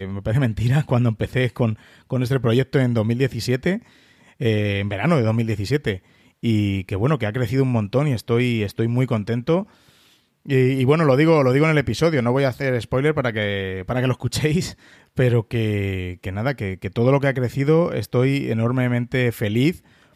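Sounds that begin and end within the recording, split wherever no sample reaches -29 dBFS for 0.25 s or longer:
2.11–3.78
4.41–5.97
6.43–9.63
10.48–14.71
15.18–19.75

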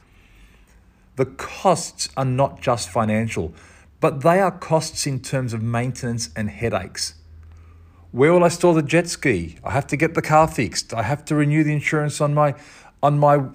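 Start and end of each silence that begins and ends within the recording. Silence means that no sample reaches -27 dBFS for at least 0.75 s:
7.08–8.14

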